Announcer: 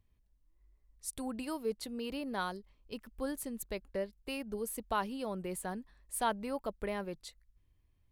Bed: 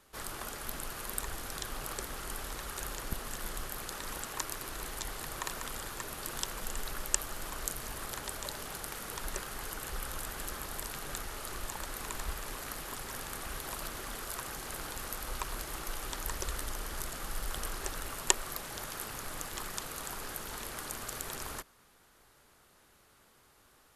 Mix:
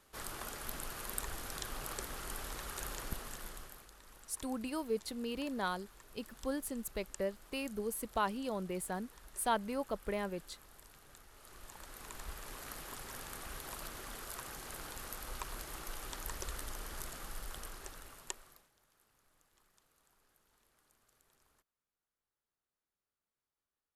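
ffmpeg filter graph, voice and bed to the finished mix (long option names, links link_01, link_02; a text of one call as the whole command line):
ffmpeg -i stem1.wav -i stem2.wav -filter_complex "[0:a]adelay=3250,volume=0dB[link_01];[1:a]volume=10.5dB,afade=type=out:start_time=3.02:duration=0.88:silence=0.158489,afade=type=in:start_time=11.3:duration=1.44:silence=0.211349,afade=type=out:start_time=17.07:duration=1.64:silence=0.0446684[link_02];[link_01][link_02]amix=inputs=2:normalize=0" out.wav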